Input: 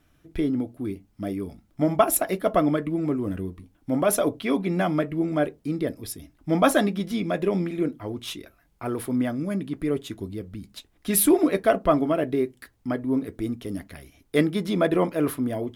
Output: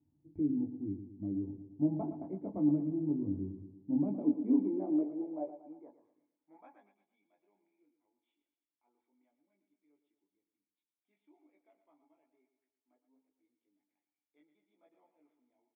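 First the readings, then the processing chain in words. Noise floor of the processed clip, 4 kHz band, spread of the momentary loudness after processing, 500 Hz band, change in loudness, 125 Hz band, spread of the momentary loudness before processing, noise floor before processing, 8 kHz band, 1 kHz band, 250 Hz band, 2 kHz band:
under -85 dBFS, under -40 dB, 13 LU, -21.0 dB, -9.5 dB, -14.0 dB, 16 LU, -64 dBFS, under -40 dB, -25.5 dB, -10.0 dB, under -40 dB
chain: chorus voices 6, 0.14 Hz, delay 20 ms, depth 1.1 ms; on a send: feedback echo 0.115 s, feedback 53%, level -10.5 dB; on the sum: high-pass sweep 100 Hz -> 3100 Hz, 3.54–7.19; vocal tract filter u; gain -2 dB

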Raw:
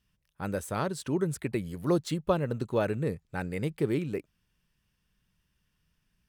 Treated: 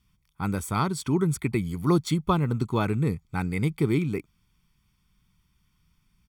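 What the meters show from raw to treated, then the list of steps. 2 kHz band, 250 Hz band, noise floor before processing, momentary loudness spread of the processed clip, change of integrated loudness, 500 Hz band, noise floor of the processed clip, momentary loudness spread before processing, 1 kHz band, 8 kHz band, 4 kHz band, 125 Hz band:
+4.0 dB, +5.5 dB, -77 dBFS, 6 LU, +4.5 dB, 0.0 dB, -70 dBFS, 7 LU, +6.0 dB, +5.5 dB, +5.5 dB, +7.5 dB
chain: comb 0.9 ms, depth 73%; gain +3.5 dB

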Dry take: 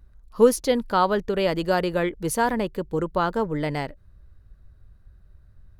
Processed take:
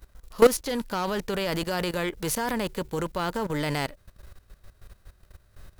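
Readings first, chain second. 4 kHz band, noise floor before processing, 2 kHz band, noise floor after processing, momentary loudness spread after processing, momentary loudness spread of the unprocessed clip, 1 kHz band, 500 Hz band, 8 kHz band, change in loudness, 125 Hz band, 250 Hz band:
+1.0 dB, -54 dBFS, -2.0 dB, -60 dBFS, 10 LU, 8 LU, -6.0 dB, -3.5 dB, +0.5 dB, -3.5 dB, -2.0 dB, -4.0 dB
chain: spectral whitening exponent 0.6; hard clip -13.5 dBFS, distortion -13 dB; level quantiser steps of 16 dB; gain +4.5 dB

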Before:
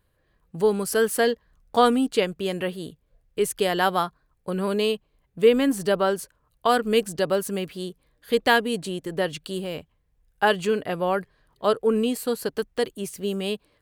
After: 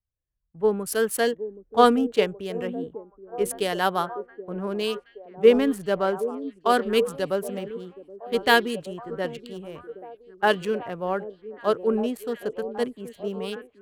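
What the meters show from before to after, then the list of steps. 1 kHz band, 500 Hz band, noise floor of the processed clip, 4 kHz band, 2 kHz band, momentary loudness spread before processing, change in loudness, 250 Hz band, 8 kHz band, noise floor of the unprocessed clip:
-0.5 dB, -0.5 dB, -64 dBFS, -2.0 dB, -0.5 dB, 12 LU, -0.5 dB, -1.5 dB, -3.5 dB, -69 dBFS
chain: Wiener smoothing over 9 samples; on a send: delay with a stepping band-pass 0.774 s, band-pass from 330 Hz, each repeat 0.7 oct, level -5.5 dB; on the sum: three-band expander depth 70%; gain -2.5 dB

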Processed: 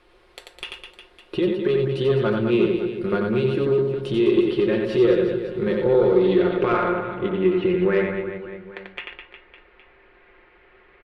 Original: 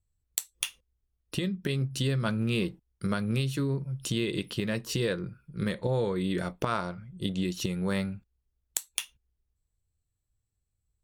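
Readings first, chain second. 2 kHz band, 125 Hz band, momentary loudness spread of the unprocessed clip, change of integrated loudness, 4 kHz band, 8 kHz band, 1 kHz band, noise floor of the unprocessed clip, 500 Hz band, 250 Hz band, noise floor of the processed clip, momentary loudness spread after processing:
+6.5 dB, +2.0 dB, 7 LU, +10.5 dB, +0.5 dB, under -15 dB, +8.5 dB, -81 dBFS, +15.5 dB, +9.0 dB, -55 dBFS, 17 LU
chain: G.711 law mismatch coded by mu; de-hum 49.5 Hz, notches 36; in parallel at -4 dB: requantised 8-bit, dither triangular; on the sum: fifteen-band EQ 160 Hz -11 dB, 400 Hz +12 dB, 6300 Hz -10 dB; low-pass sweep 9400 Hz -> 2100 Hz, 5.76–6.79; air absorption 300 m; on a send: reverse bouncing-ball echo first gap 90 ms, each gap 1.3×, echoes 5; on the sum: soft clip -9.5 dBFS, distortion -22 dB; comb 5.6 ms, depth 56%

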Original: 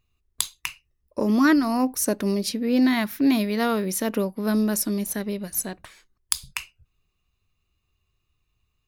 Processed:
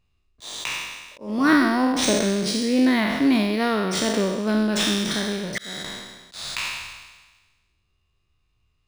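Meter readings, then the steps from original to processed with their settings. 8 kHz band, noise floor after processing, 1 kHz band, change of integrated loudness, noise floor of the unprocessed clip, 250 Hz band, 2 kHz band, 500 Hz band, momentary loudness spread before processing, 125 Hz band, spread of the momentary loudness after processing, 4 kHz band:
-1.0 dB, -70 dBFS, +3.0 dB, +1.5 dB, -75 dBFS, +1.0 dB, +5.0 dB, +2.0 dB, 14 LU, +1.5 dB, 16 LU, +7.5 dB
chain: spectral trails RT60 1.33 s; auto swell 0.357 s; decimation joined by straight lines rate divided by 3×

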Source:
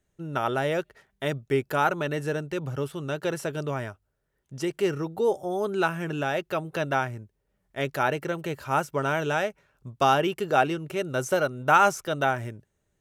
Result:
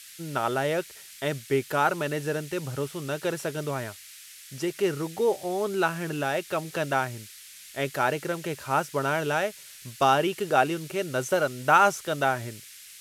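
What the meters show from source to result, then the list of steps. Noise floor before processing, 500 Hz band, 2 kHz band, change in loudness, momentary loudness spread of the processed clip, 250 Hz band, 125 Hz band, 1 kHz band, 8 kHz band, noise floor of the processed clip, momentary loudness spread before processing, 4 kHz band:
-76 dBFS, 0.0 dB, 0.0 dB, 0.0 dB, 16 LU, -0.5 dB, -1.5 dB, 0.0 dB, +4.0 dB, -47 dBFS, 10 LU, +1.0 dB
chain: low shelf 89 Hz -6 dB; band noise 1700–13000 Hz -47 dBFS

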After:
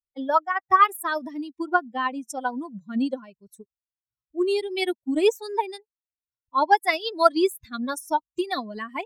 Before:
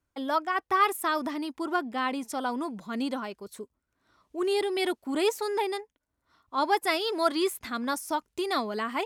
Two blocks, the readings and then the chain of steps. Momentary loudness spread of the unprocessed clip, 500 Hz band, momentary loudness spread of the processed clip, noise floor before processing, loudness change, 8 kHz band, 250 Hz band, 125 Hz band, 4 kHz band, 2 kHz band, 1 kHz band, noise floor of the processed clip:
9 LU, +3.5 dB, 13 LU, -82 dBFS, +4.5 dB, -0.5 dB, +3.0 dB, n/a, +0.5 dB, +4.0 dB, +5.5 dB, under -85 dBFS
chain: per-bin expansion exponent 2; transient shaper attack +5 dB, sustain -3 dB; dynamic EQ 4200 Hz, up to -3 dB, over -43 dBFS, Q 0.73; gain +6.5 dB

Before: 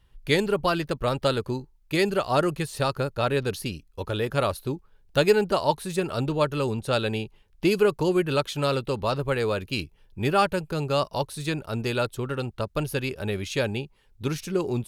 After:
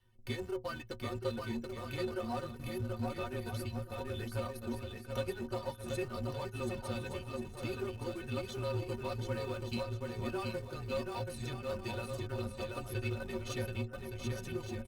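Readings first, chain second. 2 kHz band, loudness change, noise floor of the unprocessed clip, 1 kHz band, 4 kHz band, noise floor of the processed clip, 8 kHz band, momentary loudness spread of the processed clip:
-14.0 dB, -13.0 dB, -59 dBFS, -15.5 dB, -14.5 dB, -49 dBFS, -11.5 dB, 4 LU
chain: octaver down 1 oct, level -1 dB; reverb removal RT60 0.65 s; spectral gain 2.47–3.02, 340–10000 Hz -22 dB; compressor 4:1, threshold -34 dBFS, peak gain reduction 18 dB; on a send: bouncing-ball echo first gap 0.73 s, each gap 0.6×, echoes 5; on the sum: frequency shift -24 Hz; in parallel at -9 dB: Schmitt trigger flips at -37 dBFS; on the sum: metallic resonator 110 Hz, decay 0.22 s, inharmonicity 0.03; added harmonics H 8 -31 dB, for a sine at -25 dBFS; gain +2 dB; Opus 64 kbps 48000 Hz

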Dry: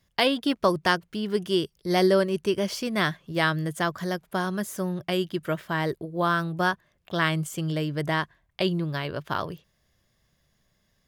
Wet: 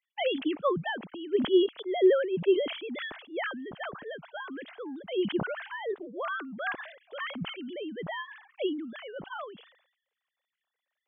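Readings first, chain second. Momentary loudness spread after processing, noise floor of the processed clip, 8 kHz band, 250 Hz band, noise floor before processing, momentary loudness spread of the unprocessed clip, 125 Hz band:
16 LU, under -85 dBFS, under -40 dB, -5.0 dB, -71 dBFS, 8 LU, -15.5 dB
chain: sine-wave speech; sustainer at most 87 dB/s; gain -5.5 dB

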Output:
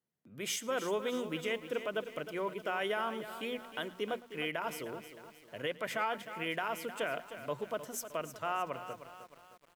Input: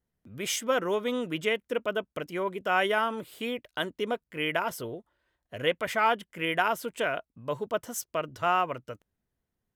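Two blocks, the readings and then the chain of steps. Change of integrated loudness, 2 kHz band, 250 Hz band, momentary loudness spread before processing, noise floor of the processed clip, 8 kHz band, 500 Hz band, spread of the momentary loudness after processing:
-7.5 dB, -8.0 dB, -6.5 dB, 10 LU, -62 dBFS, -5.0 dB, -6.5 dB, 11 LU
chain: HPF 120 Hz 24 dB/oct; notches 60/120/180/240 Hz; limiter -18 dBFS, peak gain reduction 8 dB; on a send: echo 0.108 s -21 dB; on the sum: lo-fi delay 0.309 s, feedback 55%, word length 8-bit, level -11 dB; gain -5.5 dB

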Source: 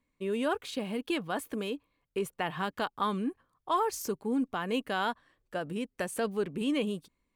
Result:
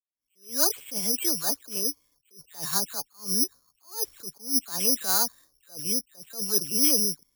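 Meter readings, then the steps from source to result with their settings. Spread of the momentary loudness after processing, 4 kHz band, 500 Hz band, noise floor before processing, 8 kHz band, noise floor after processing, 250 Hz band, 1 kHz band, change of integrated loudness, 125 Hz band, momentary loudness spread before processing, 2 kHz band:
13 LU, +11.0 dB, -5.0 dB, -80 dBFS, +21.0 dB, -75 dBFS, -3.0 dB, -6.5 dB, +8.5 dB, -3.0 dB, 8 LU, -4.5 dB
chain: dispersion lows, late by 0.149 s, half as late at 2800 Hz; careless resampling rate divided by 8×, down filtered, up zero stuff; attack slew limiter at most 180 dB/s; gain -1 dB

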